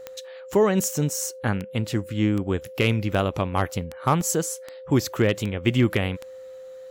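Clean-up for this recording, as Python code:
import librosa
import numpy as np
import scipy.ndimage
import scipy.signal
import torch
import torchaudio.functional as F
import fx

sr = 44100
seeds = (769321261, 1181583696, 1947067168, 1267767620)

y = fx.fix_declip(x, sr, threshold_db=-10.5)
y = fx.fix_declick_ar(y, sr, threshold=10.0)
y = fx.notch(y, sr, hz=520.0, q=30.0)
y = fx.fix_interpolate(y, sr, at_s=(1.1, 4.21), length_ms=1.6)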